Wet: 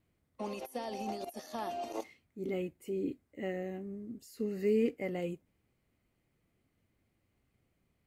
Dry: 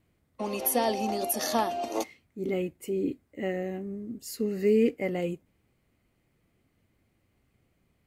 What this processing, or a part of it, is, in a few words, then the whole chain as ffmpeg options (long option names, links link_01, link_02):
de-esser from a sidechain: -filter_complex "[0:a]asplit=2[link_01][link_02];[link_02]highpass=4300,apad=whole_len=355528[link_03];[link_01][link_03]sidechaincompress=threshold=-45dB:ratio=12:attack=1:release=34,volume=-6dB"